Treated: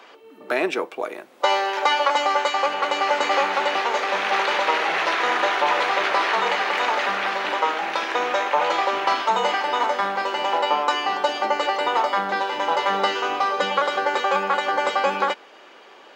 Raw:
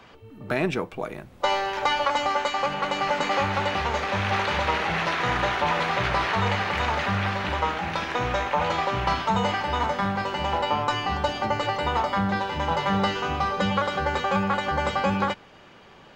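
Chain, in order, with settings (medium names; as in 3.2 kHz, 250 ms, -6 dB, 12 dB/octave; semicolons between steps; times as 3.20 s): high-pass 320 Hz 24 dB/octave; trim +4 dB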